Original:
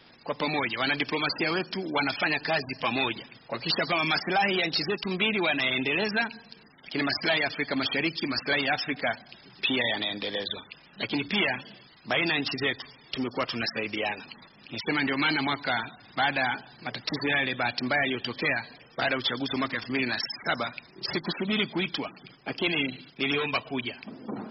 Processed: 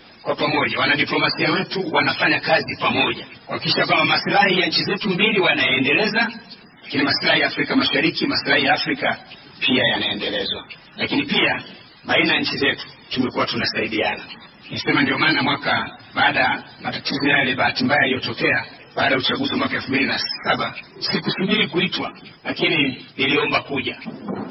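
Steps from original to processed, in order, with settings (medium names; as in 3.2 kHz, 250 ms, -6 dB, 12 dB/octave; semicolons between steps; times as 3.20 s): phase randomisation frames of 50 ms; trim +9 dB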